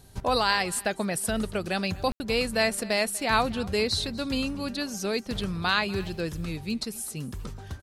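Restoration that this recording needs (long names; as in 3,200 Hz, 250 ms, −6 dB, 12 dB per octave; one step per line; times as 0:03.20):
ambience match 0:02.12–0:02.20
echo removal 243 ms −21 dB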